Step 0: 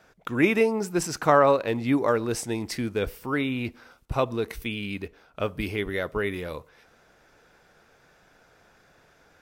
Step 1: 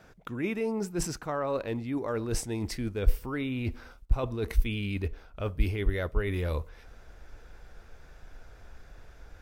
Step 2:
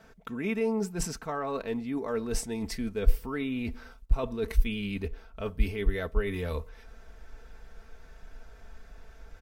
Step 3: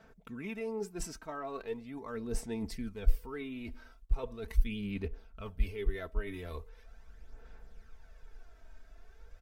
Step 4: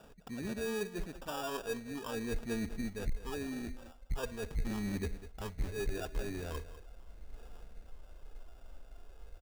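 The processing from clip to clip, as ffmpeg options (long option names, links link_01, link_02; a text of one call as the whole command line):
ffmpeg -i in.wav -af "lowshelf=frequency=260:gain=10,areverse,acompressor=threshold=-27dB:ratio=12,areverse,asubboost=boost=8:cutoff=55" out.wav
ffmpeg -i in.wav -af "aecho=1:1:4.5:0.59,volume=-1.5dB" out.wav
ffmpeg -i in.wav -af "aphaser=in_gain=1:out_gain=1:delay=3.2:decay=0.49:speed=0.4:type=sinusoidal,volume=-9dB" out.wav
ffmpeg -i in.wav -af "aresample=8000,asoftclip=type=tanh:threshold=-30dB,aresample=44100,acrusher=samples=21:mix=1:aa=0.000001,aecho=1:1:200:0.178,volume=2dB" out.wav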